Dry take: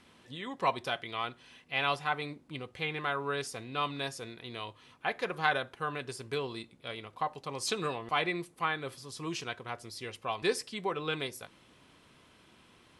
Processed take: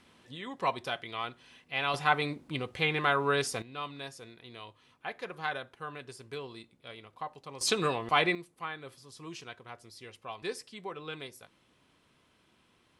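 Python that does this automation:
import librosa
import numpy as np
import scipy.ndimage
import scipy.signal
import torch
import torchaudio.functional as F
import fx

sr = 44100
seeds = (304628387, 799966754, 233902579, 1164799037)

y = fx.gain(x, sr, db=fx.steps((0.0, -1.0), (1.94, 6.0), (3.62, -6.0), (7.61, 4.5), (8.35, -7.0)))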